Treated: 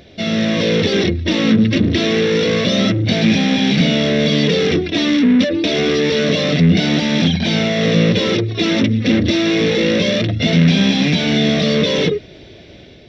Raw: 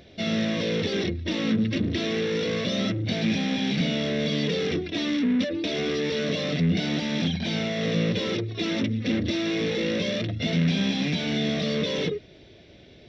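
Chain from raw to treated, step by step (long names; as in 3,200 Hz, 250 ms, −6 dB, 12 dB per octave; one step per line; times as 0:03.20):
automatic gain control gain up to 4 dB
level +7 dB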